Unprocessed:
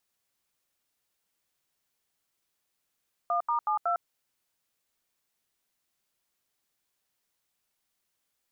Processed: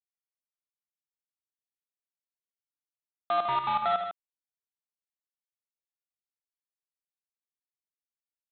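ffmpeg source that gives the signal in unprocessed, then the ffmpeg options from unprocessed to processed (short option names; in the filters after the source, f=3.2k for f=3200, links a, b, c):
-f lavfi -i "aevalsrc='0.0447*clip(min(mod(t,0.185),0.105-mod(t,0.185))/0.002,0,1)*(eq(floor(t/0.185),0)*(sin(2*PI*697*mod(t,0.185))+sin(2*PI*1209*mod(t,0.185)))+eq(floor(t/0.185),1)*(sin(2*PI*941*mod(t,0.185))+sin(2*PI*1209*mod(t,0.185)))+eq(floor(t/0.185),2)*(sin(2*PI*852*mod(t,0.185))+sin(2*PI*1209*mod(t,0.185)))+eq(floor(t/0.185),3)*(sin(2*PI*697*mod(t,0.185))+sin(2*PI*1336*mod(t,0.185))))':d=0.74:s=44100"
-af "equalizer=f=620:t=o:w=0.75:g=3,aresample=8000,acrusher=bits=4:mix=0:aa=0.5,aresample=44100,aecho=1:1:78.72|151.6:0.398|0.355"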